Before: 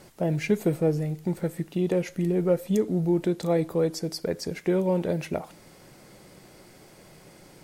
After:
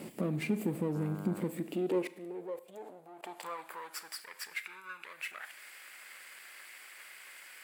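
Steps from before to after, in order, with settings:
lower of the sound and its delayed copy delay 0.39 ms
parametric band 5,500 Hz −10 dB 0.43 octaves
0:04.64–0:05.04: comb filter 0.8 ms, depth 83%
low-shelf EQ 75 Hz +7.5 dB
downward compressor 2 to 1, threshold −35 dBFS, peak gain reduction 10 dB
brickwall limiter −32.5 dBFS, peak gain reduction 13.5 dB
0:00.94–0:01.40: hum with harmonics 100 Hz, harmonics 16, −50 dBFS −4 dB per octave
0:02.07–0:03.23: output level in coarse steps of 23 dB
high-pass filter sweep 220 Hz → 1,600 Hz, 0:01.35–0:04.21
four-comb reverb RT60 0.72 s, combs from 29 ms, DRR 15.5 dB
level +4.5 dB

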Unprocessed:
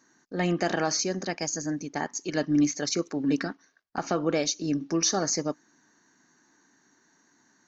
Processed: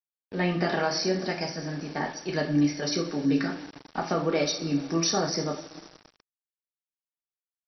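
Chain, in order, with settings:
coupled-rooms reverb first 0.38 s, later 4.2 s, from −21 dB, DRR 0 dB
centre clipping without the shift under −38.5 dBFS
level −1.5 dB
MP2 48 kbit/s 22,050 Hz

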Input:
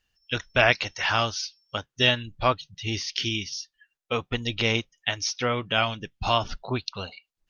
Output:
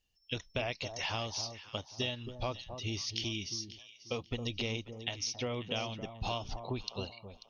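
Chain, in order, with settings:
parametric band 1,500 Hz −14 dB 0.82 octaves
downward compressor, threshold −29 dBFS, peak gain reduction 11 dB
on a send: delay that swaps between a low-pass and a high-pass 270 ms, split 1,100 Hz, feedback 50%, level −8.5 dB
on the sum: level −3.5 dB

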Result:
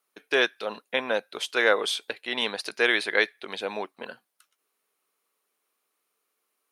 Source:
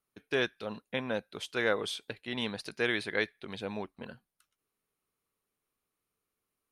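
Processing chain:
high-pass filter 430 Hz 12 dB per octave
level +9 dB

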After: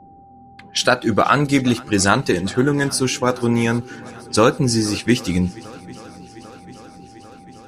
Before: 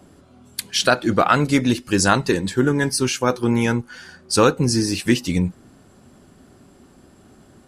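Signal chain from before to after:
low-pass that shuts in the quiet parts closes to 390 Hz, open at −17.5 dBFS
feedback echo with a long and a short gap by turns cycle 795 ms, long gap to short 1.5 to 1, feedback 67%, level −23 dB
steady tone 790 Hz −45 dBFS
level +1 dB

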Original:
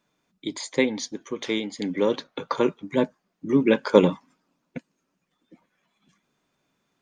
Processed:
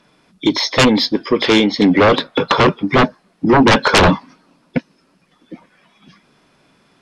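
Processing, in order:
hearing-aid frequency compression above 3,300 Hz 1.5 to 1
sine wavefolder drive 19 dB, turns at −1.5 dBFS
level −4.5 dB

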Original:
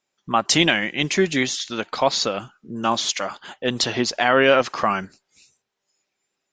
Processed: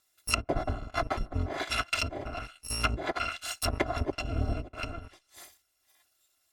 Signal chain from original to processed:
samples in bit-reversed order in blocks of 256 samples
treble cut that deepens with the level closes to 440 Hz, closed at −17.5 dBFS
0:04.18–0:04.77: dynamic equaliser 1,400 Hz, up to −8 dB, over −56 dBFS, Q 0.95
level +7 dB

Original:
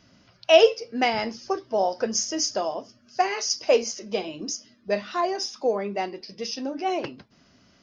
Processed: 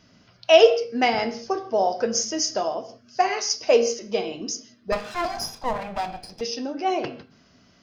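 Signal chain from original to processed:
0:04.92–0:06.41: lower of the sound and its delayed copy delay 1.2 ms
convolution reverb, pre-delay 3 ms, DRR 9 dB
level +1 dB

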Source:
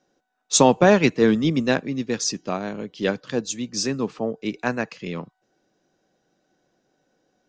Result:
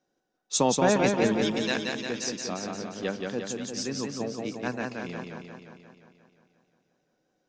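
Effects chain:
0:01.41–0:02.07: spectral tilt +4 dB per octave
feedback echo with a swinging delay time 176 ms, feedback 63%, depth 58 cents, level −3.5 dB
level −8.5 dB

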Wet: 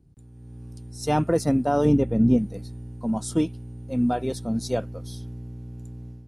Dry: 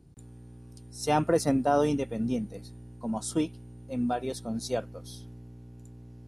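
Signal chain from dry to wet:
low-shelf EQ 290 Hz +8 dB
automatic gain control gain up to 10.5 dB
0:01.85–0:02.38: tilt shelving filter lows +6 dB, about 1,500 Hz
level −8 dB

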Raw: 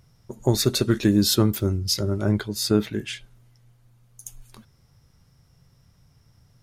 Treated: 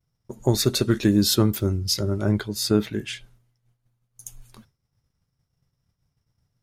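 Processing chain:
downward expander −46 dBFS

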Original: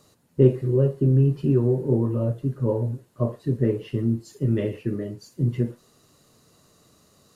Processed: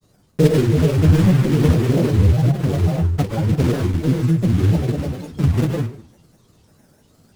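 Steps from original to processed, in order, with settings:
one scale factor per block 3 bits
low-shelf EQ 260 Hz +12 dB
dense smooth reverb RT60 0.66 s, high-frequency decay 0.75×, pre-delay 105 ms, DRR 0 dB
granular cloud, spray 32 ms, pitch spread up and down by 7 semitones
level −2.5 dB

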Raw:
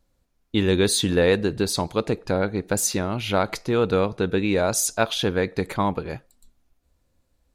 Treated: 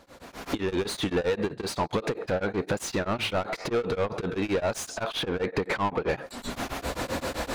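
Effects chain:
camcorder AGC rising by 58 dB per second
high-pass filter 40 Hz 6 dB per octave
0:01.21–0:01.93: noise gate −23 dBFS, range −20 dB
0:05.12–0:06.09: low-pass filter 3,000 Hz 6 dB per octave
downward compressor 10 to 1, threshold −33 dBFS, peak gain reduction 24.5 dB
mid-hump overdrive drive 29 dB, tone 1,700 Hz, clips at −18.5 dBFS
tremolo along a rectified sine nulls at 7.7 Hz
level +3.5 dB

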